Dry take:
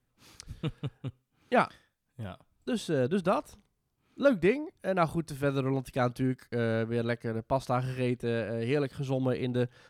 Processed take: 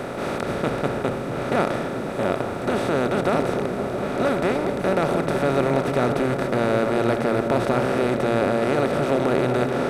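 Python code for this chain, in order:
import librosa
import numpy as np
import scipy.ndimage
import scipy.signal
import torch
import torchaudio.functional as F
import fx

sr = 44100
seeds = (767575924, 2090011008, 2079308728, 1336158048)

y = fx.bin_compress(x, sr, power=0.2)
y = fx.echo_opening(y, sr, ms=223, hz=200, octaves=1, feedback_pct=70, wet_db=-3)
y = y * 10.0 ** (-3.0 / 20.0)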